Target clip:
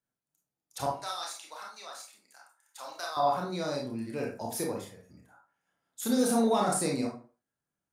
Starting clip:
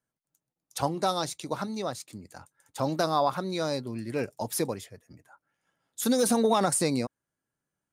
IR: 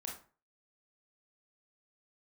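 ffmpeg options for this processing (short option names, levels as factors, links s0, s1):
-filter_complex "[0:a]asettb=1/sr,asplit=3[s0][s1][s2];[s0]atrim=end=0.864[s3];[s1]atrim=start=0.86:end=3.17,asetpts=PTS-STARTPTS,afade=t=in:d=0.004:c=qsin,afade=t=out:st=2.306:d=0.004:c=qsin,highpass=1200[s4];[s2]atrim=start=3.166[s5];[s3][s4]acrossfade=d=0.004:c1=hsin:c2=qsin[s6];[s6][s5]acrossfade=d=0.004:c1=qsin:c2=hsin[s7];[1:a]atrim=start_sample=2205,afade=t=out:st=0.41:d=0.01,atrim=end_sample=18522[s8];[s7][s8]afir=irnorm=-1:irlink=0,volume=0.891"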